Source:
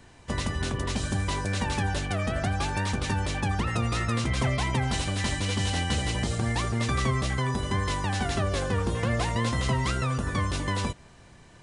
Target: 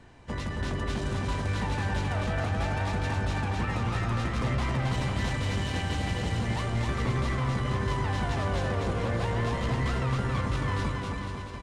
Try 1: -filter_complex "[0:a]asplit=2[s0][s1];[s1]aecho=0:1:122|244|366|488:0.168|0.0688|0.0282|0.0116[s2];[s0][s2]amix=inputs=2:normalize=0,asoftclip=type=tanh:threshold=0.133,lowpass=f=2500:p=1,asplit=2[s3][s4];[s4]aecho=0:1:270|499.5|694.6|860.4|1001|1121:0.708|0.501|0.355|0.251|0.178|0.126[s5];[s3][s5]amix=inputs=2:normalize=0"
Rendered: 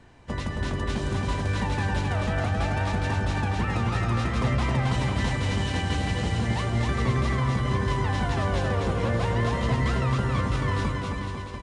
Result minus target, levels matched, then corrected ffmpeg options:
saturation: distortion -12 dB
-filter_complex "[0:a]asplit=2[s0][s1];[s1]aecho=0:1:122|244|366|488:0.168|0.0688|0.0282|0.0116[s2];[s0][s2]amix=inputs=2:normalize=0,asoftclip=type=tanh:threshold=0.0447,lowpass=f=2500:p=1,asplit=2[s3][s4];[s4]aecho=0:1:270|499.5|694.6|860.4|1001|1121:0.708|0.501|0.355|0.251|0.178|0.126[s5];[s3][s5]amix=inputs=2:normalize=0"

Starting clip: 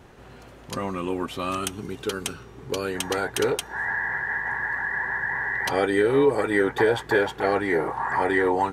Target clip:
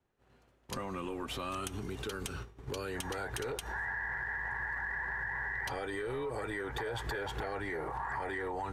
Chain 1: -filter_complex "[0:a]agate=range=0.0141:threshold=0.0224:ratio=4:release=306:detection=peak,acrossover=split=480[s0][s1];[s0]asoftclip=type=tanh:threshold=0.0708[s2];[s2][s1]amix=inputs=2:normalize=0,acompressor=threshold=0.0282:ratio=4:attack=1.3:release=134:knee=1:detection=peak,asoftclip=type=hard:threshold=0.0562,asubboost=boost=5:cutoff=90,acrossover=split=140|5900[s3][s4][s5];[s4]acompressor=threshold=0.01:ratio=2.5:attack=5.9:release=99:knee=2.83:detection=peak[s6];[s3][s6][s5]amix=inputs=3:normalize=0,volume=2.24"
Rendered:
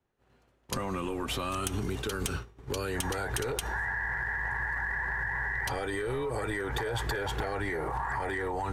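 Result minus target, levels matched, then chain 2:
compression: peak gain reduction -9 dB
-filter_complex "[0:a]agate=range=0.0141:threshold=0.0224:ratio=4:release=306:detection=peak,acrossover=split=480[s0][s1];[s0]asoftclip=type=tanh:threshold=0.0708[s2];[s2][s1]amix=inputs=2:normalize=0,acompressor=threshold=0.00708:ratio=4:attack=1.3:release=134:knee=1:detection=peak,asoftclip=type=hard:threshold=0.0562,asubboost=boost=5:cutoff=90,acrossover=split=140|5900[s3][s4][s5];[s4]acompressor=threshold=0.01:ratio=2.5:attack=5.9:release=99:knee=2.83:detection=peak[s6];[s3][s6][s5]amix=inputs=3:normalize=0,volume=2.24"

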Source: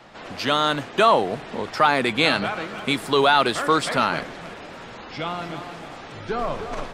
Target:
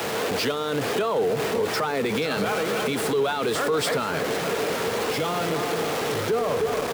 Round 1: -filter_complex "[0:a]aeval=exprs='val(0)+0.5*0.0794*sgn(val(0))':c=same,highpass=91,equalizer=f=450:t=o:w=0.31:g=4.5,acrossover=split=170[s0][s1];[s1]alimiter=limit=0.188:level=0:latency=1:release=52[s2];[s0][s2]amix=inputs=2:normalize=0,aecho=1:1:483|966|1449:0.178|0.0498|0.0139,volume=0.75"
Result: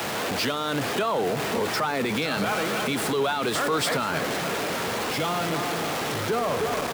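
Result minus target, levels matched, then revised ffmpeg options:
500 Hz band -2.5 dB
-filter_complex "[0:a]aeval=exprs='val(0)+0.5*0.0794*sgn(val(0))':c=same,highpass=91,equalizer=f=450:t=o:w=0.31:g=14,acrossover=split=170[s0][s1];[s1]alimiter=limit=0.188:level=0:latency=1:release=52[s2];[s0][s2]amix=inputs=2:normalize=0,aecho=1:1:483|966|1449:0.178|0.0498|0.0139,volume=0.75"

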